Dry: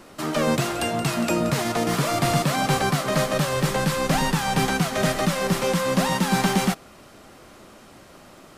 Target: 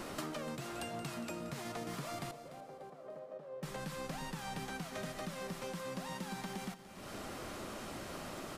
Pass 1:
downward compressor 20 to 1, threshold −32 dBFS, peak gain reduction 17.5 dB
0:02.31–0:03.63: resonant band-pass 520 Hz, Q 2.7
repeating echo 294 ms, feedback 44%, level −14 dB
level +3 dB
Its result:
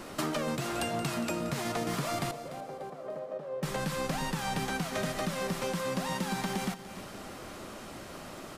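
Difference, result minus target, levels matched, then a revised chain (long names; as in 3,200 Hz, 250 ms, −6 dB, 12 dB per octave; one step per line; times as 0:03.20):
downward compressor: peak gain reduction −9.5 dB
downward compressor 20 to 1, threshold −42 dBFS, peak gain reduction 27 dB
0:02.31–0:03.63: resonant band-pass 520 Hz, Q 2.7
repeating echo 294 ms, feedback 44%, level −14 dB
level +3 dB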